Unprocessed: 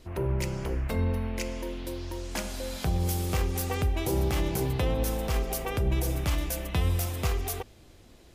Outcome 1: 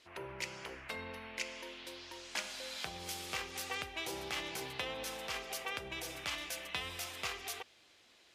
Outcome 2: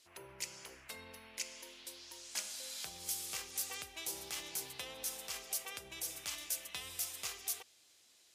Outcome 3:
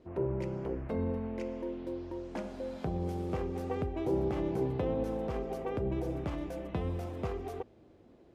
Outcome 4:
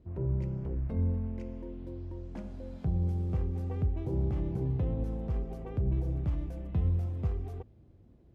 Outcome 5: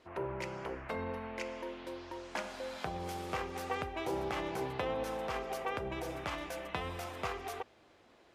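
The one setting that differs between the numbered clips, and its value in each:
resonant band-pass, frequency: 2,900, 7,300, 360, 120, 1,100 Hertz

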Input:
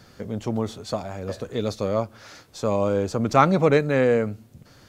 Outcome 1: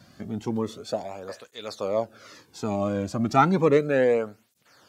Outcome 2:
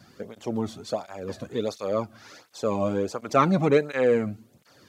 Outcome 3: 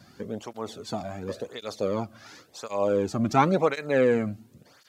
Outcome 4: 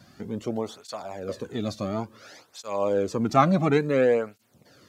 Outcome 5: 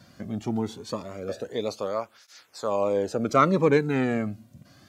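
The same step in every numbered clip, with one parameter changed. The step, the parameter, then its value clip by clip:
through-zero flanger with one copy inverted, nulls at: 0.33, 1.4, 0.93, 0.57, 0.22 Hertz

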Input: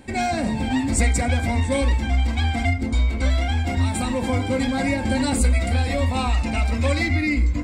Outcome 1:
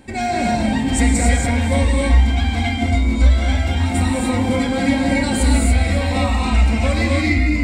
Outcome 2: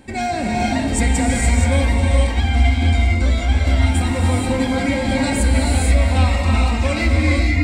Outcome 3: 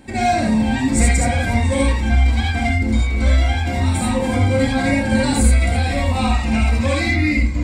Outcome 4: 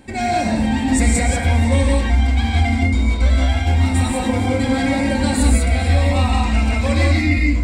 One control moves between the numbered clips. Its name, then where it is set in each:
reverb whose tail is shaped and stops, gate: 310, 500, 100, 210 milliseconds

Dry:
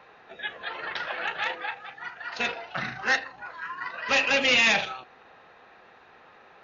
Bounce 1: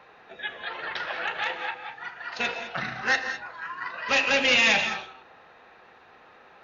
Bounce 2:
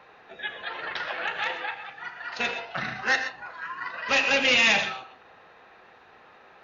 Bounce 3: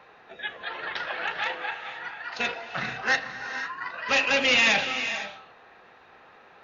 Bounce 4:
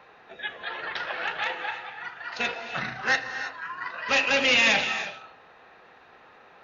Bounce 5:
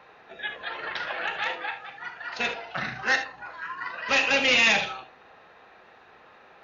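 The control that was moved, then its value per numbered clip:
reverb whose tail is shaped and stops, gate: 230, 150, 530, 350, 90 milliseconds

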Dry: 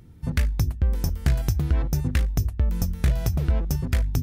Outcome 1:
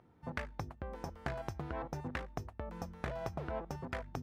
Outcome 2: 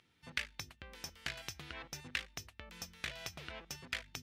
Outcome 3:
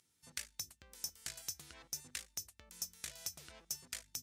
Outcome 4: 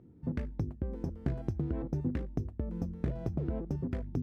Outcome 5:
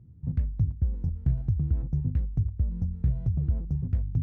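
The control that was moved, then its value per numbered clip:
resonant band-pass, frequency: 860, 2,900, 7,600, 320, 110 Hertz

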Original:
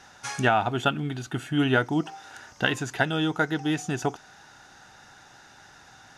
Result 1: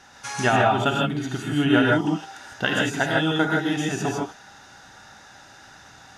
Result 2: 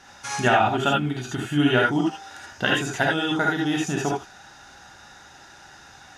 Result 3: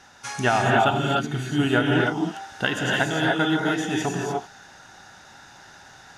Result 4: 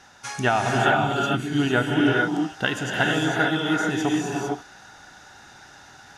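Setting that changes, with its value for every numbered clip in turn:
reverb whose tail is shaped and stops, gate: 180, 100, 320, 480 milliseconds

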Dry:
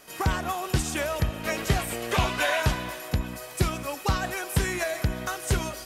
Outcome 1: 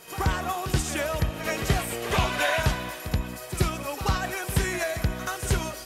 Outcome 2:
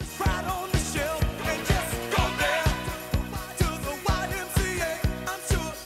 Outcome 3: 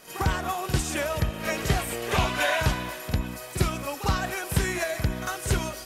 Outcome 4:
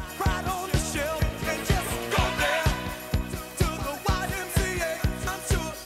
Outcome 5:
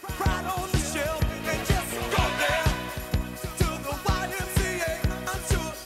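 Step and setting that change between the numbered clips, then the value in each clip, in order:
backwards echo, delay time: 79, 733, 49, 275, 167 milliseconds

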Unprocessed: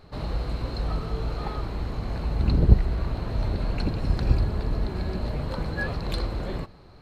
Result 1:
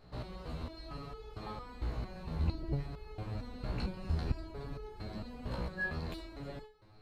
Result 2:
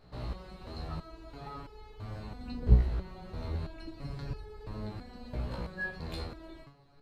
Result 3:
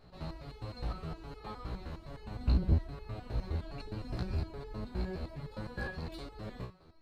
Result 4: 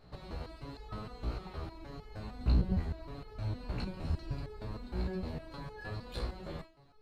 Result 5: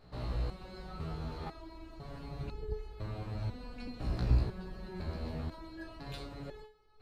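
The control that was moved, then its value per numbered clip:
step-sequenced resonator, speed: 4.4, 3, 9.7, 6.5, 2 Hertz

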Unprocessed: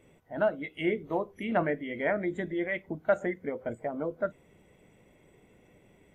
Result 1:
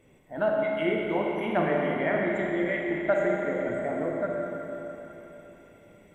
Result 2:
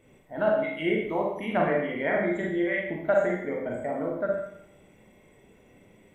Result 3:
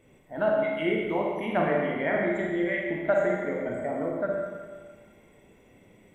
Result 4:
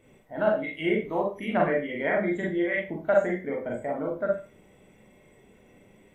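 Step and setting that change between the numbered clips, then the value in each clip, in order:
four-comb reverb, RT60: 3.7, 0.73, 1.6, 0.31 seconds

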